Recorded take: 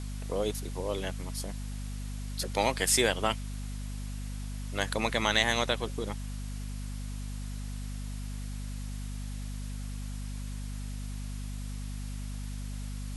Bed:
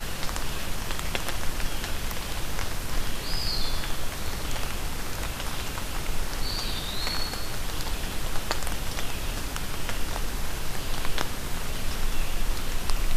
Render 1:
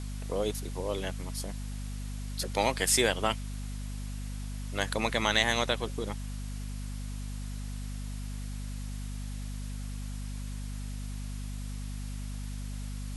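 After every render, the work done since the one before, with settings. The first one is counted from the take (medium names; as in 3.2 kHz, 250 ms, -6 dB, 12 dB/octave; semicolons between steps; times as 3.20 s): no audible change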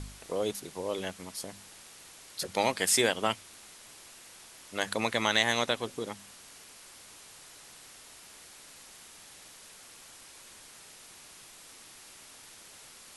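de-hum 50 Hz, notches 5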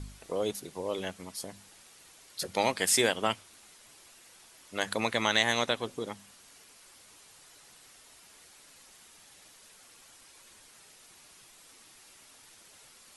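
noise reduction 6 dB, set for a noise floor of -52 dBFS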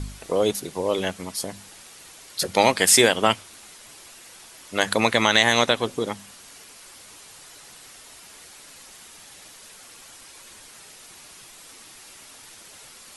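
trim +10 dB; peak limiter -3 dBFS, peak gain reduction 2.5 dB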